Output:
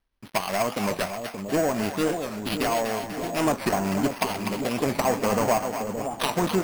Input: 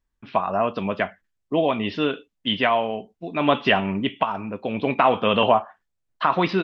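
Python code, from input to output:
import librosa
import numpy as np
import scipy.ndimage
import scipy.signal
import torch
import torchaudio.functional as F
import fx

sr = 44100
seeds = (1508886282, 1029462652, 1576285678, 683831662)

p1 = fx.dead_time(x, sr, dead_ms=0.29)
p2 = fx.high_shelf(p1, sr, hz=3600.0, db=10.0)
p3 = np.clip(p2, -10.0 ** (-17.0 / 20.0), 10.0 ** (-17.0 / 20.0))
p4 = p2 + F.gain(torch.from_numpy(p3), -3.5).numpy()
p5 = fx.env_lowpass_down(p4, sr, base_hz=1300.0, full_db=-13.5)
p6 = fx.echo_split(p5, sr, split_hz=700.0, low_ms=571, high_ms=246, feedback_pct=52, wet_db=-6.5)
p7 = np.repeat(p6[::6], 6)[:len(p6)]
p8 = fx.record_warp(p7, sr, rpm=45.0, depth_cents=160.0)
y = F.gain(torch.from_numpy(p8), -5.0).numpy()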